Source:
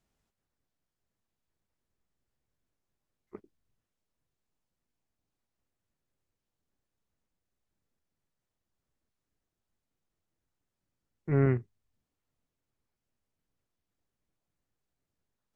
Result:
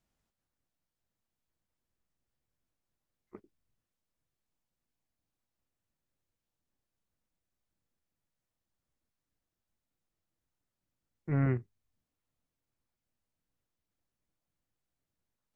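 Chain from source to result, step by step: notch 410 Hz, Q 12; gain -2.5 dB

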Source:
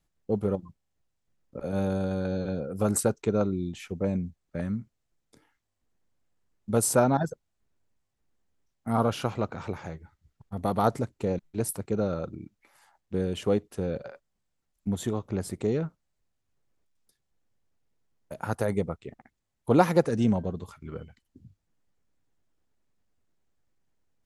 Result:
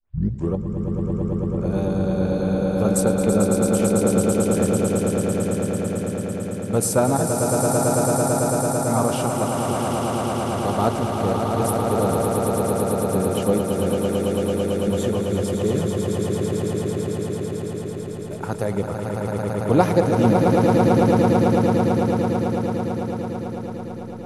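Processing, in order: tape start at the beginning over 0.55 s; dynamic EQ 1600 Hz, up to -3 dB, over -43 dBFS, Q 2; on a send: swelling echo 0.111 s, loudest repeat 8, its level -5.5 dB; on the sum: gain +3 dB

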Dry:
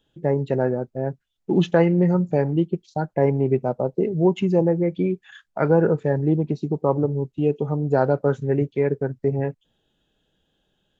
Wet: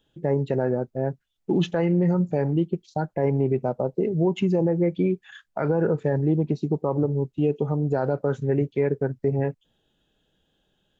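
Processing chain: limiter -13.5 dBFS, peak gain reduction 8.5 dB

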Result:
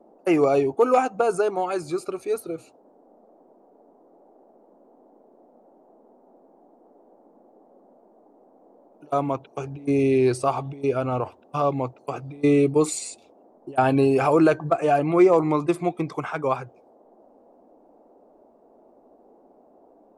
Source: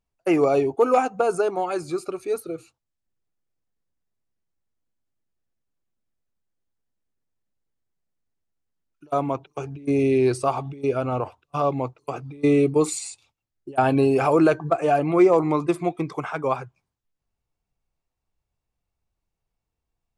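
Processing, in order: band noise 220–770 Hz -55 dBFS

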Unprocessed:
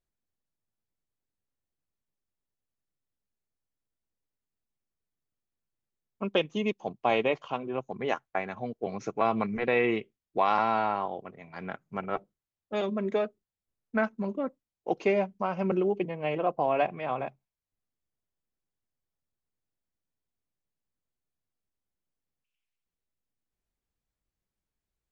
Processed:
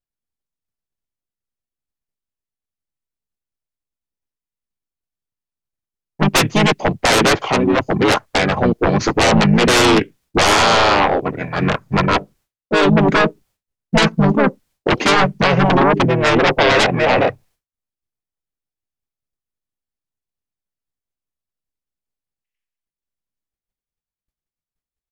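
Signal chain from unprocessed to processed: sine folder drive 17 dB, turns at -11.5 dBFS; harmoniser -5 st -1 dB; expander -45 dBFS

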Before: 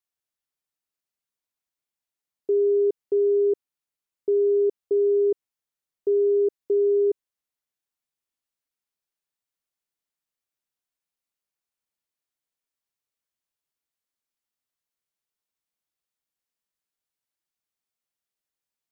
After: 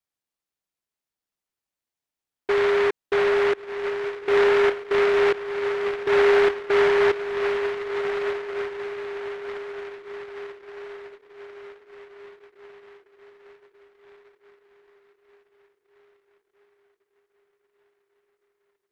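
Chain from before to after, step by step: 4.49–5.14 tone controls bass -7 dB, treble +8 dB; diffused feedback echo 1.411 s, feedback 51%, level -7.5 dB; noise-modulated delay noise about 1300 Hz, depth 0.16 ms

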